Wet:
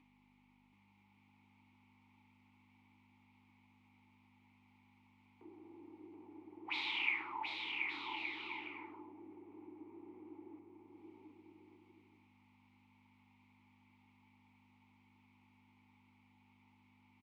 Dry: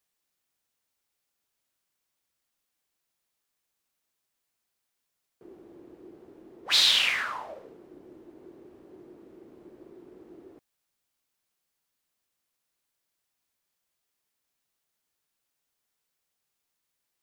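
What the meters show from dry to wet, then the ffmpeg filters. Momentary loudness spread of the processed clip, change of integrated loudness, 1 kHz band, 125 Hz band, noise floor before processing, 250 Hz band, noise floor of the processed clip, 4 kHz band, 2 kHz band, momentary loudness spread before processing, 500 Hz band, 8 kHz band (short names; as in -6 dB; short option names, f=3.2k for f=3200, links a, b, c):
23 LU, -20.0 dB, -5.5 dB, n/a, -82 dBFS, -2.5 dB, -70 dBFS, -19.0 dB, -7.5 dB, 16 LU, -10.5 dB, under -30 dB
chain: -filter_complex "[0:a]acrossover=split=500 3300:gain=0.2 1 0.178[a][b][c];[a][b][c]amix=inputs=3:normalize=0,bandreject=f=720:w=15,acompressor=mode=upward:threshold=-46dB:ratio=2.5,aeval=exprs='val(0)+0.002*(sin(2*PI*50*n/s)+sin(2*PI*2*50*n/s)/2+sin(2*PI*3*50*n/s)/3+sin(2*PI*4*50*n/s)/4+sin(2*PI*5*50*n/s)/5)':c=same,asplit=3[d][e][f];[d]bandpass=f=300:t=q:w=8,volume=0dB[g];[e]bandpass=f=870:t=q:w=8,volume=-6dB[h];[f]bandpass=f=2.24k:t=q:w=8,volume=-9dB[i];[g][h][i]amix=inputs=3:normalize=0,asplit=2[j][k];[k]aecho=0:1:730|1168|1431|1588|1683:0.631|0.398|0.251|0.158|0.1[l];[j][l]amix=inputs=2:normalize=0,volume=6dB"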